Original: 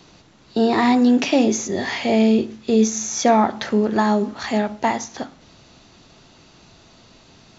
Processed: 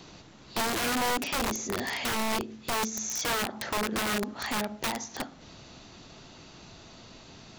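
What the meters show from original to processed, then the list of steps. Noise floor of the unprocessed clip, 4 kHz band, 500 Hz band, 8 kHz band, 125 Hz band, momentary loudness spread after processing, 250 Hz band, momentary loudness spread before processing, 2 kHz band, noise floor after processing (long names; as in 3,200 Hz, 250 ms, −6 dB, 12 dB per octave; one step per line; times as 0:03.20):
−51 dBFS, −2.5 dB, −14.5 dB, can't be measured, −10.5 dB, 21 LU, −17.5 dB, 8 LU, −4.0 dB, −51 dBFS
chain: downward compressor 2 to 1, threshold −35 dBFS, peak gain reduction 13 dB
wrap-around overflow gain 23.5 dB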